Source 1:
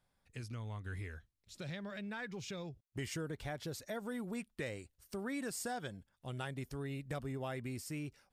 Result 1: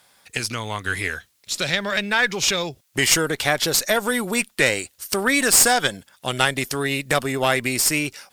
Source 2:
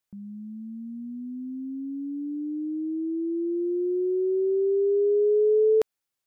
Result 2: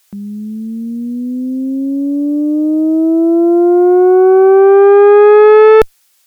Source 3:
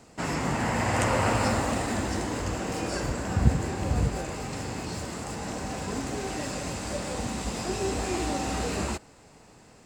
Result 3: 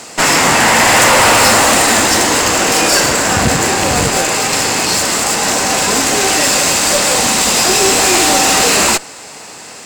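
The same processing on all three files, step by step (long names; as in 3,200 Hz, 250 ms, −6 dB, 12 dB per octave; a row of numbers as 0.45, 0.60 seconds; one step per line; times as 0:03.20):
high-pass filter 580 Hz 6 dB per octave
high-shelf EQ 2,100 Hz +7 dB
tube saturation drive 30 dB, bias 0.6
normalise the peak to −1.5 dBFS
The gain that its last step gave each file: +26.0, +27.5, +24.5 decibels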